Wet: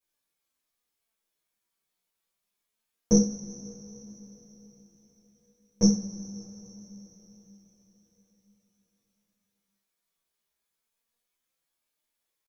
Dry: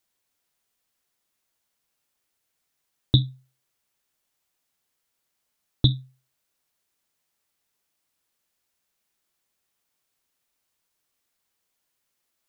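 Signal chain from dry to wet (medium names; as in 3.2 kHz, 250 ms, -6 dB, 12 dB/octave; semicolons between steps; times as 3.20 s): flange 0.25 Hz, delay 5.1 ms, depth 3.6 ms, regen +68%; pitch shift +8 st; two-slope reverb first 0.36 s, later 4.7 s, from -22 dB, DRR -10 dB; trim -8.5 dB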